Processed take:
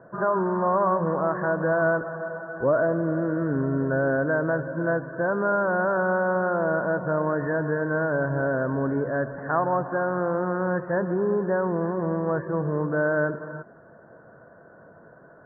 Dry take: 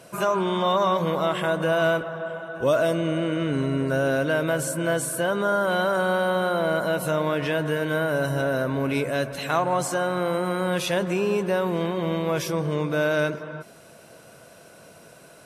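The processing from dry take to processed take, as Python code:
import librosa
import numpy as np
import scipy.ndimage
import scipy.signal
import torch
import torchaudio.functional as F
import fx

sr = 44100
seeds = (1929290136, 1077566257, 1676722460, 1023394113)

y = scipy.signal.sosfilt(scipy.signal.cheby1(8, 1.0, 1800.0, 'lowpass', fs=sr, output='sos'), x)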